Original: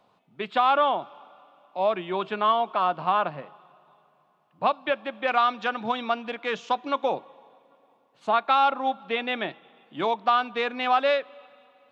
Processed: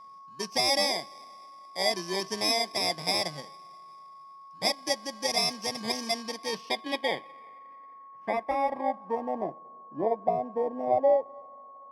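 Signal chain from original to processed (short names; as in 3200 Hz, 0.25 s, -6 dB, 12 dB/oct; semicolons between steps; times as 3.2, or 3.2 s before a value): FFT order left unsorted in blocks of 32 samples; low-pass sweep 5500 Hz -> 660 Hz, 6.14–9.64; whine 1100 Hz -44 dBFS; gain -2 dB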